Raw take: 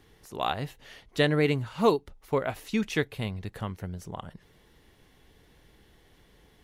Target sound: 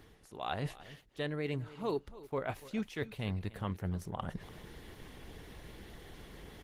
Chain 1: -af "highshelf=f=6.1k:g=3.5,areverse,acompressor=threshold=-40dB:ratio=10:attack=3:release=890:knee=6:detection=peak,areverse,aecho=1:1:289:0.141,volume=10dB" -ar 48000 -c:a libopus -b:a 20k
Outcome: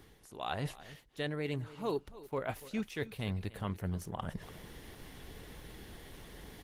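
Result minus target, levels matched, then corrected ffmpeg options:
8000 Hz band +4.5 dB
-af "highshelf=f=6.1k:g=-3,areverse,acompressor=threshold=-40dB:ratio=10:attack=3:release=890:knee=6:detection=peak,areverse,aecho=1:1:289:0.141,volume=10dB" -ar 48000 -c:a libopus -b:a 20k

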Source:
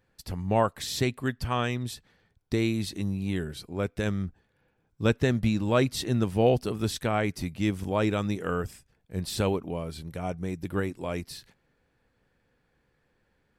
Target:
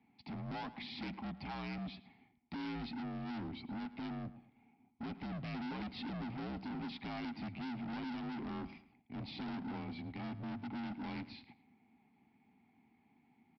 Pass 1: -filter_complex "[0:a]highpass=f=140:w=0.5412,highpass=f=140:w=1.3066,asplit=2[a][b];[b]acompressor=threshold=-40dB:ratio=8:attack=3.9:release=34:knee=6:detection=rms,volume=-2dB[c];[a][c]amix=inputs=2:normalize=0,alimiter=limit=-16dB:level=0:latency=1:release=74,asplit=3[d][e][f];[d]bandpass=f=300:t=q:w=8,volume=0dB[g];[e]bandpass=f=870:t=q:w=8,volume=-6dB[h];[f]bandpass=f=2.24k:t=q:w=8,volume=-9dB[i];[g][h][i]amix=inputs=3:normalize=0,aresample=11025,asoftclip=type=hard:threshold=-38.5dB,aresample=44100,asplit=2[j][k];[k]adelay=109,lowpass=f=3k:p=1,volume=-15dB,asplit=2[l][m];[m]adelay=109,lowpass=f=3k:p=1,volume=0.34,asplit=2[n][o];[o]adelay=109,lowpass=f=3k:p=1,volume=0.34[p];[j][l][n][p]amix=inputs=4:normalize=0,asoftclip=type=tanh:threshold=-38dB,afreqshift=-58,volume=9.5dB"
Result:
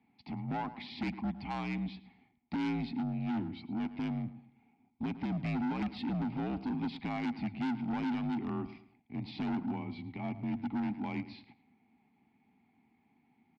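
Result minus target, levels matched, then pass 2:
hard clip: distortion -6 dB
-filter_complex "[0:a]highpass=f=140:w=0.5412,highpass=f=140:w=1.3066,asplit=2[a][b];[b]acompressor=threshold=-40dB:ratio=8:attack=3.9:release=34:knee=6:detection=rms,volume=-2dB[c];[a][c]amix=inputs=2:normalize=0,alimiter=limit=-16dB:level=0:latency=1:release=74,asplit=3[d][e][f];[d]bandpass=f=300:t=q:w=8,volume=0dB[g];[e]bandpass=f=870:t=q:w=8,volume=-6dB[h];[f]bandpass=f=2.24k:t=q:w=8,volume=-9dB[i];[g][h][i]amix=inputs=3:normalize=0,aresample=11025,asoftclip=type=hard:threshold=-50dB,aresample=44100,asplit=2[j][k];[k]adelay=109,lowpass=f=3k:p=1,volume=-15dB,asplit=2[l][m];[m]adelay=109,lowpass=f=3k:p=1,volume=0.34,asplit=2[n][o];[o]adelay=109,lowpass=f=3k:p=1,volume=0.34[p];[j][l][n][p]amix=inputs=4:normalize=0,asoftclip=type=tanh:threshold=-38dB,afreqshift=-58,volume=9.5dB"

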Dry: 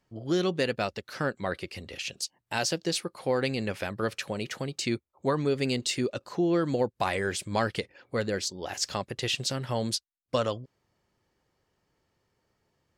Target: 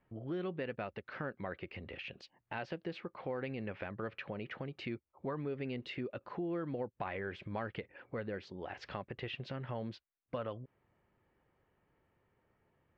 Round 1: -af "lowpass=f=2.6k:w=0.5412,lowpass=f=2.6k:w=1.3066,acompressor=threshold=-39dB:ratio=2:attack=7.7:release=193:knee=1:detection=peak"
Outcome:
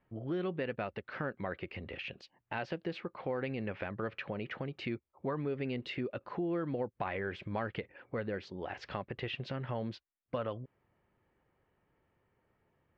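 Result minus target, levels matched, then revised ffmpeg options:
compressor: peak gain reduction -3.5 dB
-af "lowpass=f=2.6k:w=0.5412,lowpass=f=2.6k:w=1.3066,acompressor=threshold=-45.5dB:ratio=2:attack=7.7:release=193:knee=1:detection=peak"

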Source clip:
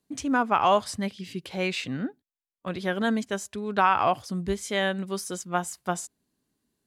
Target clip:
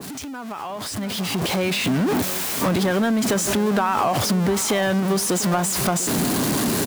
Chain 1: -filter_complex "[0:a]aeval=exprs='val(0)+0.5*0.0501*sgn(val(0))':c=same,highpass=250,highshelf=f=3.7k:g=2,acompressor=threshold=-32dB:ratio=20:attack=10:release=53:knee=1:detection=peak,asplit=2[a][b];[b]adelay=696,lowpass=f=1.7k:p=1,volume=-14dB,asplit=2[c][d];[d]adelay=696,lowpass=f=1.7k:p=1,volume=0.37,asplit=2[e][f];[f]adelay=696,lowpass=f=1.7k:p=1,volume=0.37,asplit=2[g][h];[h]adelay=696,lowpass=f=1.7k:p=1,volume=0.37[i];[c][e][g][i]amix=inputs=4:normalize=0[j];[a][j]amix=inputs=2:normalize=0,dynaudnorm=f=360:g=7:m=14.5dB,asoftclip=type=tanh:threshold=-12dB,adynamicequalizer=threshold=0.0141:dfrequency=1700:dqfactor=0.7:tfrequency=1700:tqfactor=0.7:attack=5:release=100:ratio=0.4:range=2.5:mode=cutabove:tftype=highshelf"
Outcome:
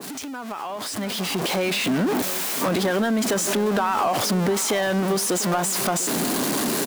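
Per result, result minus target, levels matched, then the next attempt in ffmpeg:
soft clip: distortion +13 dB; 125 Hz band -3.0 dB
-filter_complex "[0:a]aeval=exprs='val(0)+0.5*0.0501*sgn(val(0))':c=same,highpass=250,highshelf=f=3.7k:g=2,acompressor=threshold=-32dB:ratio=20:attack=10:release=53:knee=1:detection=peak,asplit=2[a][b];[b]adelay=696,lowpass=f=1.7k:p=1,volume=-14dB,asplit=2[c][d];[d]adelay=696,lowpass=f=1.7k:p=1,volume=0.37,asplit=2[e][f];[f]adelay=696,lowpass=f=1.7k:p=1,volume=0.37,asplit=2[g][h];[h]adelay=696,lowpass=f=1.7k:p=1,volume=0.37[i];[c][e][g][i]amix=inputs=4:normalize=0[j];[a][j]amix=inputs=2:normalize=0,dynaudnorm=f=360:g=7:m=14.5dB,asoftclip=type=tanh:threshold=-5dB,adynamicequalizer=threshold=0.0141:dfrequency=1700:dqfactor=0.7:tfrequency=1700:tqfactor=0.7:attack=5:release=100:ratio=0.4:range=2.5:mode=cutabove:tftype=highshelf"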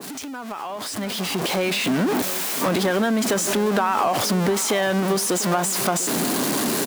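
125 Hz band -3.5 dB
-filter_complex "[0:a]aeval=exprs='val(0)+0.5*0.0501*sgn(val(0))':c=same,highpass=96,highshelf=f=3.7k:g=2,acompressor=threshold=-32dB:ratio=20:attack=10:release=53:knee=1:detection=peak,asplit=2[a][b];[b]adelay=696,lowpass=f=1.7k:p=1,volume=-14dB,asplit=2[c][d];[d]adelay=696,lowpass=f=1.7k:p=1,volume=0.37,asplit=2[e][f];[f]adelay=696,lowpass=f=1.7k:p=1,volume=0.37,asplit=2[g][h];[h]adelay=696,lowpass=f=1.7k:p=1,volume=0.37[i];[c][e][g][i]amix=inputs=4:normalize=0[j];[a][j]amix=inputs=2:normalize=0,dynaudnorm=f=360:g=7:m=14.5dB,asoftclip=type=tanh:threshold=-5dB,adynamicequalizer=threshold=0.0141:dfrequency=1700:dqfactor=0.7:tfrequency=1700:tqfactor=0.7:attack=5:release=100:ratio=0.4:range=2.5:mode=cutabove:tftype=highshelf"

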